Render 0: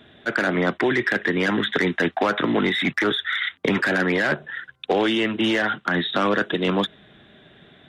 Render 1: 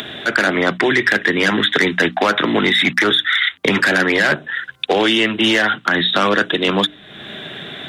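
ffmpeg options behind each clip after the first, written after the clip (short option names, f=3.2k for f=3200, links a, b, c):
-filter_complex "[0:a]acrossover=split=100[a][b];[b]acompressor=mode=upward:threshold=-25dB:ratio=2.5[c];[a][c]amix=inputs=2:normalize=0,highshelf=f=2.1k:g=8.5,bandreject=f=60:t=h:w=6,bandreject=f=120:t=h:w=6,bandreject=f=180:t=h:w=6,bandreject=f=240:t=h:w=6,bandreject=f=300:t=h:w=6,volume=4dB"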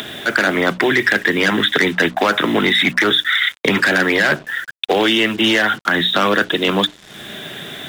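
-af "acrusher=bits=5:mix=0:aa=0.5"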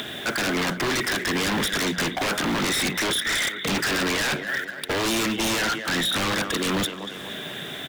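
-af "aecho=1:1:238|476|714|952|1190:0.168|0.0907|0.049|0.0264|0.0143,aeval=exprs='0.168*(abs(mod(val(0)/0.168+3,4)-2)-1)':c=same,volume=-3.5dB"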